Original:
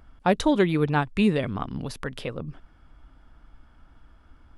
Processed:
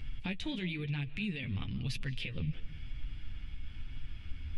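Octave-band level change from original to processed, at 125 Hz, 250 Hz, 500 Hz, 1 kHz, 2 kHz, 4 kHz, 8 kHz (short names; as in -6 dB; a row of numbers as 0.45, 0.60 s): -6.5, -14.0, -23.0, -26.0, -9.5, -5.0, -12.5 dB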